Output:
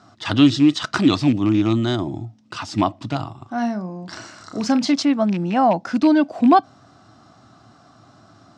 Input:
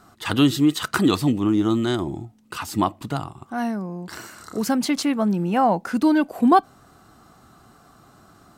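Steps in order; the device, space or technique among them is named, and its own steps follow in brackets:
0:03.07–0:04.94: double-tracking delay 38 ms −11 dB
car door speaker with a rattle (loose part that buzzes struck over −23 dBFS, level −24 dBFS; loudspeaker in its box 91–6,700 Hz, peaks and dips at 110 Hz +9 dB, 280 Hz +5 dB, 440 Hz −6 dB, 640 Hz +6 dB, 3,600 Hz +3 dB, 5,300 Hz +6 dB)

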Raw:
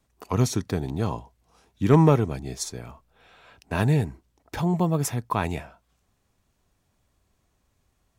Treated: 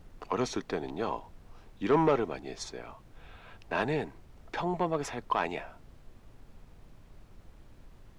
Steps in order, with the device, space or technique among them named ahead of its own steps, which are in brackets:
aircraft cabin announcement (band-pass filter 370–3,700 Hz; soft clipping −16.5 dBFS, distortion −14 dB; brown noise bed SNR 16 dB)

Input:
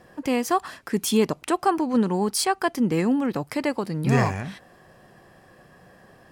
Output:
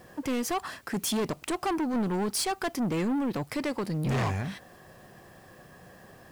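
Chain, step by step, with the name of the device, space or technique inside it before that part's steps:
open-reel tape (soft clipping −25 dBFS, distortion −7 dB; parametric band 92 Hz +2.5 dB; white noise bed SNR 34 dB)

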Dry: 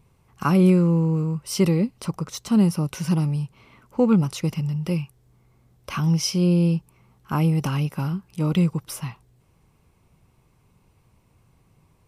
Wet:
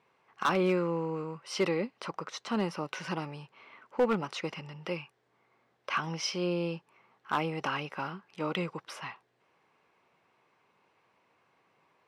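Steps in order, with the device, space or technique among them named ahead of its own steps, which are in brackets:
megaphone (band-pass filter 490–3,500 Hz; parametric band 1,700 Hz +5 dB 0.49 octaves; hard clipping −20 dBFS, distortion −15 dB)

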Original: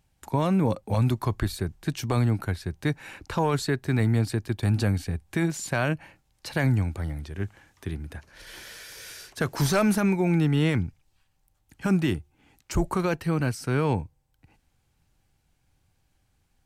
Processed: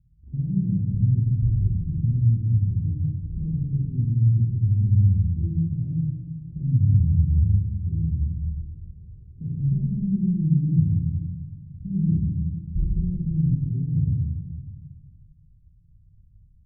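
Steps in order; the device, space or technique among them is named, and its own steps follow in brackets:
club heard from the street (brickwall limiter −24 dBFS, peak gain reduction 11 dB; low-pass filter 160 Hz 24 dB per octave; convolution reverb RT60 1.5 s, pre-delay 25 ms, DRR −6.5 dB)
level +7.5 dB

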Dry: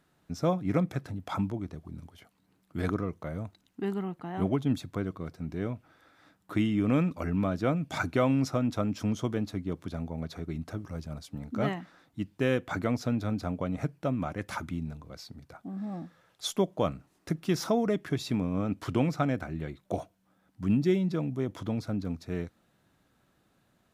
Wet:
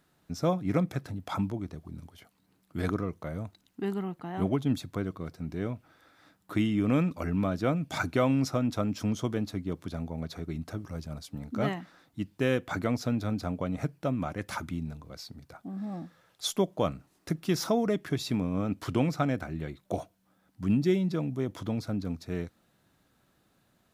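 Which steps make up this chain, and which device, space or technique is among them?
presence and air boost (parametric band 4,500 Hz +2 dB; high-shelf EQ 10,000 Hz +6 dB)

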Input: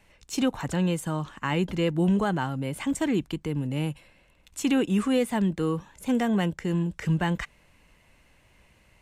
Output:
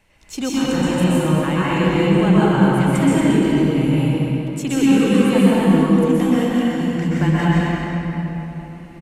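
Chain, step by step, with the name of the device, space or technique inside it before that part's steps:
0:06.22–0:06.81: guitar amp tone stack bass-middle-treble 10-0-10
cave (single-tap delay 230 ms −9 dB; convolution reverb RT60 3.8 s, pre-delay 117 ms, DRR −9 dB)

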